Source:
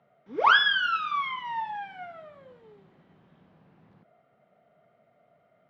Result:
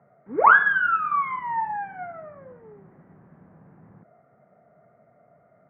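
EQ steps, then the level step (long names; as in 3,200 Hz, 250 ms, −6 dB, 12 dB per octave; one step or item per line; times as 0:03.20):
Butterworth low-pass 2,000 Hz 36 dB per octave
high-frequency loss of the air 200 metres
parametric band 120 Hz +3 dB 1.3 octaves
+6.5 dB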